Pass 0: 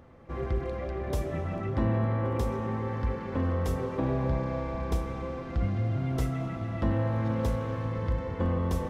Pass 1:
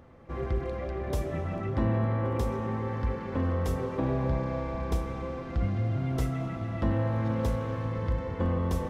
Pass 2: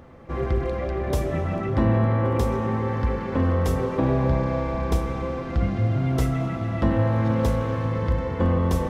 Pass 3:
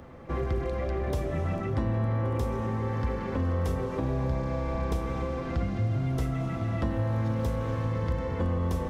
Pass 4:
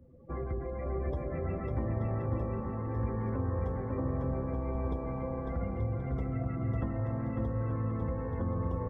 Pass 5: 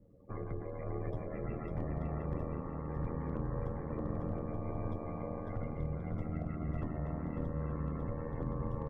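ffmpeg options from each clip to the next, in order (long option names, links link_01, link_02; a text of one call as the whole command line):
ffmpeg -i in.wav -af anull out.wav
ffmpeg -i in.wav -af "bandreject=frequency=50:width_type=h:width=6,bandreject=frequency=100:width_type=h:width=6,volume=7dB" out.wav
ffmpeg -i in.wav -filter_complex "[0:a]acrossover=split=96|5000[link_01][link_02][link_03];[link_01]acompressor=threshold=-30dB:ratio=4[link_04];[link_02]acompressor=threshold=-30dB:ratio=4[link_05];[link_03]acompressor=threshold=-53dB:ratio=4[link_06];[link_04][link_05][link_06]amix=inputs=3:normalize=0" out.wav
ffmpeg -i in.wav -af "afftdn=noise_reduction=26:noise_floor=-40,aecho=1:1:550|880|1078|1197|1268:0.631|0.398|0.251|0.158|0.1,volume=-6.5dB" out.wav
ffmpeg -i in.wav -af "volume=24dB,asoftclip=hard,volume=-24dB,aeval=exprs='val(0)*sin(2*PI*40*n/s)':channel_layout=same,volume=-1.5dB" out.wav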